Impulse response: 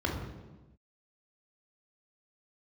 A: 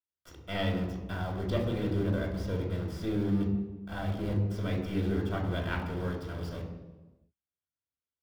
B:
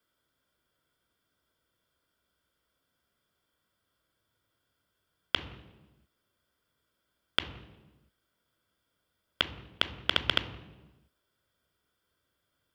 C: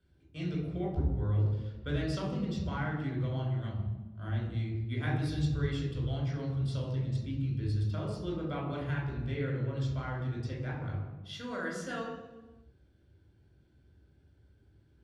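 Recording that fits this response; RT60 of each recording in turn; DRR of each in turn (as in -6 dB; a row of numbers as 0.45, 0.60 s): A; 1.1 s, 1.1 s, not exponential; 0.5, 10.0, -4.0 dB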